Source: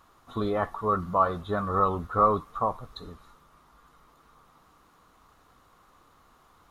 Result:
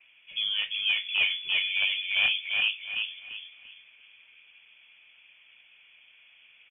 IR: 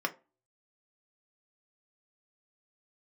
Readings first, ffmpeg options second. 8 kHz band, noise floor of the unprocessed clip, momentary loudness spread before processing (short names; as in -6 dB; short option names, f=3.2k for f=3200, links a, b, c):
n/a, -61 dBFS, 15 LU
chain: -filter_complex "[0:a]adynamicequalizer=threshold=0.00708:dfrequency=300:dqfactor=1.4:tfrequency=300:tqfactor=1.4:attack=5:release=100:ratio=0.375:range=2.5:mode=cutabove:tftype=bell,highpass=f=130:w=0.5412,highpass=f=130:w=1.3066,highshelf=f=2.2k:g=-6.5,asplit=2[a][b];[b]acompressor=threshold=-37dB:ratio=6,volume=-2dB[c];[a][c]amix=inputs=2:normalize=0,asoftclip=type=hard:threshold=-17dB,flanger=delay=8.9:depth=7.5:regen=-59:speed=1.6:shape=triangular,aeval=exprs='0.0891*(abs(mod(val(0)/0.0891+3,4)-2)-1)':c=same,aecho=1:1:343|686|1029|1372:0.668|0.214|0.0684|0.0219,asplit=2[d][e];[1:a]atrim=start_sample=2205,asetrate=29106,aresample=44100[f];[e][f]afir=irnorm=-1:irlink=0,volume=-19.5dB[g];[d][g]amix=inputs=2:normalize=0,lowpass=f=3.1k:t=q:w=0.5098,lowpass=f=3.1k:t=q:w=0.6013,lowpass=f=3.1k:t=q:w=0.9,lowpass=f=3.1k:t=q:w=2.563,afreqshift=-3600"